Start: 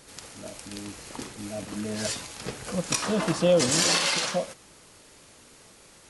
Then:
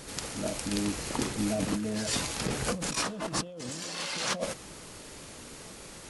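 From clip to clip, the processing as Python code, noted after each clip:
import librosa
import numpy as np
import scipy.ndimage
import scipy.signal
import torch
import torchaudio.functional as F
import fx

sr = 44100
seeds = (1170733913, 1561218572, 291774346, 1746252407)

y = fx.low_shelf(x, sr, hz=340.0, db=5.0)
y = fx.over_compress(y, sr, threshold_db=-33.0, ratio=-1.0)
y = fx.peak_eq(y, sr, hz=100.0, db=-5.5, octaves=0.24)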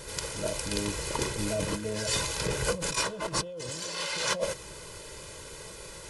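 y = x + 0.75 * np.pad(x, (int(2.0 * sr / 1000.0), 0))[:len(x)]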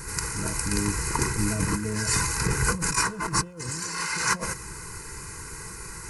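y = fx.fixed_phaser(x, sr, hz=1400.0, stages=4)
y = F.gain(torch.from_numpy(y), 8.5).numpy()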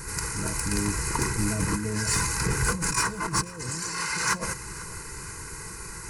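y = 10.0 ** (-14.5 / 20.0) * np.tanh(x / 10.0 ** (-14.5 / 20.0))
y = fx.echo_feedback(y, sr, ms=491, feedback_pct=55, wet_db=-19)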